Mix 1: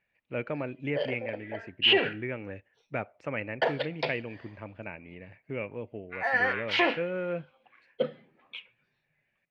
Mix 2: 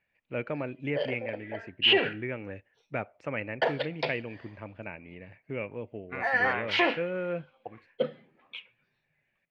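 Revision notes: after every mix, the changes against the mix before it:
second voice: remove high-pass filter 1,300 Hz 24 dB per octave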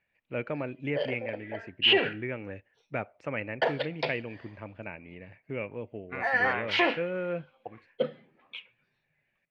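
nothing changed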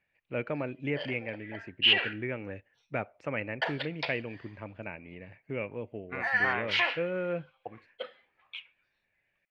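background: add high-pass filter 1,000 Hz 12 dB per octave

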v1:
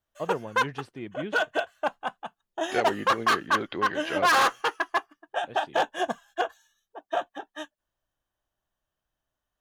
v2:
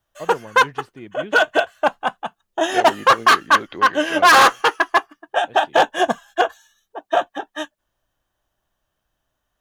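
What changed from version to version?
background +10.0 dB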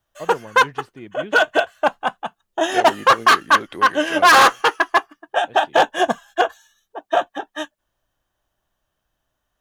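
second voice: remove linear-phase brick-wall low-pass 5,000 Hz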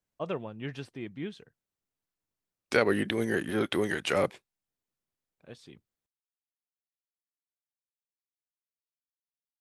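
second voice +6.5 dB
background: muted
master: add parametric band 640 Hz −2.5 dB 2.4 octaves

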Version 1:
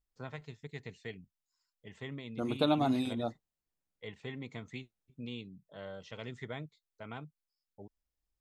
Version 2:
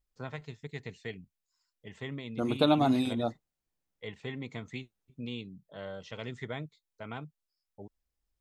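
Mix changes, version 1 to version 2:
first voice +3.5 dB
second voice +4.0 dB

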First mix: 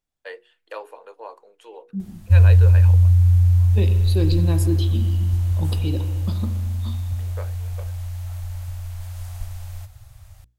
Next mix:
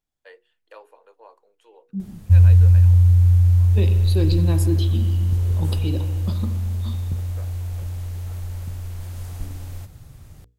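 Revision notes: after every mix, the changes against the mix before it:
first voice −10.0 dB
background: remove Chebyshev band-stop filter 110–620 Hz, order 3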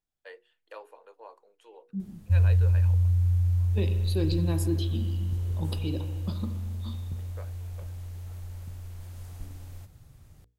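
second voice −5.0 dB
background −9.5 dB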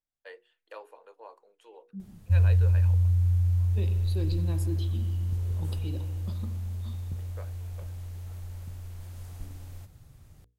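second voice −7.0 dB

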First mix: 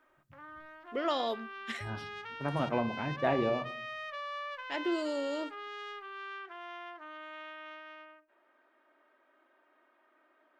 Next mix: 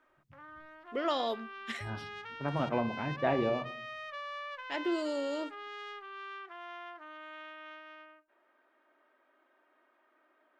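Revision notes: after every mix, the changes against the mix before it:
second voice: add high-frequency loss of the air 66 metres
background: send off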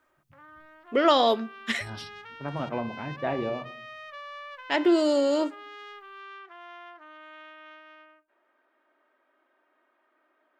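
first voice +11.5 dB

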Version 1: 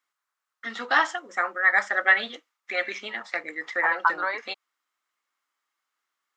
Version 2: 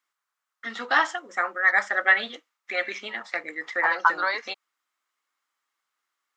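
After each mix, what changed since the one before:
second voice: remove high-frequency loss of the air 340 metres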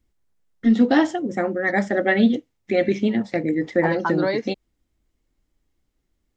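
master: remove high-pass with resonance 1,200 Hz, resonance Q 3.4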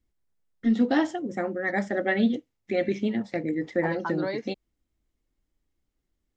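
first voice −6.0 dB
second voice −8.0 dB

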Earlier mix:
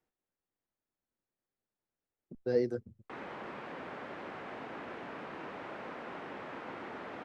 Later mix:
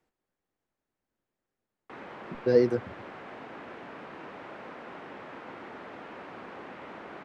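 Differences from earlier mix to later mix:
speech +8.0 dB
background: entry −1.20 s

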